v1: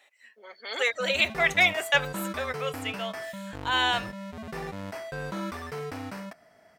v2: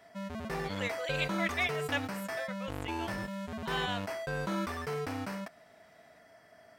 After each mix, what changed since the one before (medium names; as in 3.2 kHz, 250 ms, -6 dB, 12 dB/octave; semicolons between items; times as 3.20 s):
speech -11.0 dB; background: entry -0.85 s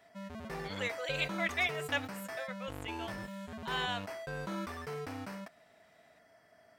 background -5.0 dB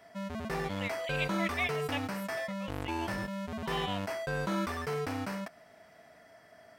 speech: add static phaser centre 1.5 kHz, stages 6; background +6.5 dB